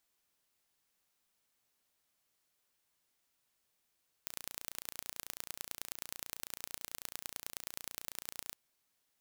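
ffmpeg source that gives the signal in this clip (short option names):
-f lavfi -i "aevalsrc='0.266*eq(mod(n,1515),0)*(0.5+0.5*eq(mod(n,4545),0))':d=4.26:s=44100"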